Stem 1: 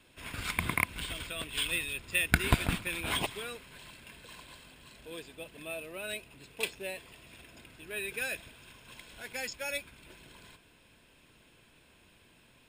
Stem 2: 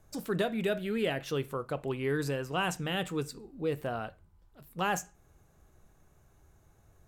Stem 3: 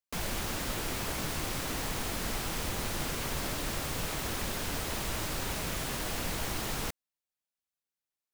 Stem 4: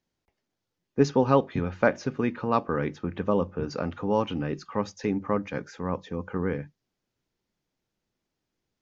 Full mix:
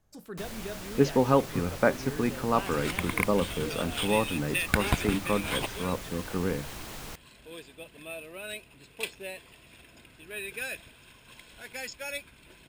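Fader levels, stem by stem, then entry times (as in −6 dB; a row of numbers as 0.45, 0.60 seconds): −0.5, −9.0, −7.0, −1.5 decibels; 2.40, 0.00, 0.25, 0.00 seconds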